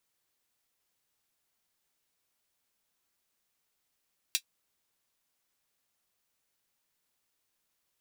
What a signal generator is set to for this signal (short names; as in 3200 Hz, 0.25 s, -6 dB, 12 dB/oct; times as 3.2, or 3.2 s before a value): closed hi-hat, high-pass 3100 Hz, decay 0.08 s